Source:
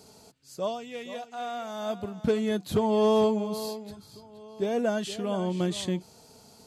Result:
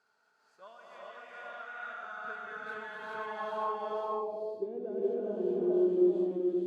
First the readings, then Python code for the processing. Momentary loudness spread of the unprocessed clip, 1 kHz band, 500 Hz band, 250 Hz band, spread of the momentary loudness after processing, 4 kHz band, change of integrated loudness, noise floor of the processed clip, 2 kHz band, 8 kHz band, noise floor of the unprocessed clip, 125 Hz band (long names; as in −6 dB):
16 LU, −4.0 dB, −4.5 dB, −4.0 dB, 19 LU, −18.0 dB, −4.5 dB, −72 dBFS, +0.5 dB, below −25 dB, −55 dBFS, below −15 dB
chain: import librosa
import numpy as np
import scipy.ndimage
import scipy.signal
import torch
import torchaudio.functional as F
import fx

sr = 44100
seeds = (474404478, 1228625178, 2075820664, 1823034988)

y = fx.filter_sweep_bandpass(x, sr, from_hz=1500.0, to_hz=350.0, start_s=3.12, end_s=3.83, q=7.5)
y = fx.echo_multitap(y, sr, ms=(429, 520), db=(-3.0, -3.5))
y = fx.rev_gated(y, sr, seeds[0], gate_ms=450, shape='rising', drr_db=-5.5)